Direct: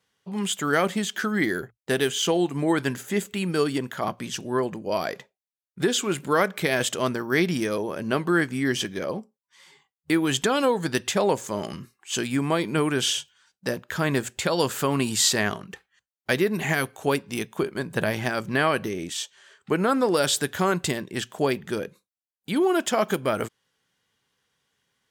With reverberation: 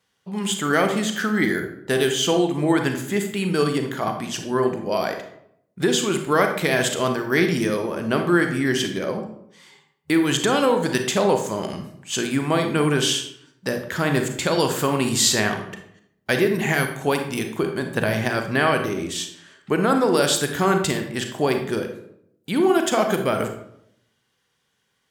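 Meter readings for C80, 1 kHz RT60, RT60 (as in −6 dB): 11.0 dB, 0.70 s, 0.75 s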